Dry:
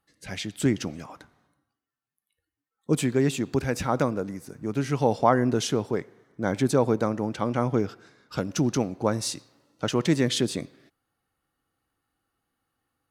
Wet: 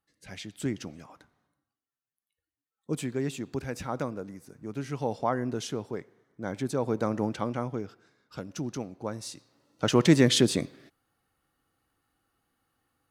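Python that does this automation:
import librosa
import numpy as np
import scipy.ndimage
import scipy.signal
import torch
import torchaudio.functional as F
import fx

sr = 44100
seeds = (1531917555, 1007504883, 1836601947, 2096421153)

y = fx.gain(x, sr, db=fx.line((6.76, -8.0), (7.23, 0.0), (7.78, -10.0), (9.31, -10.0), (9.96, 3.0)))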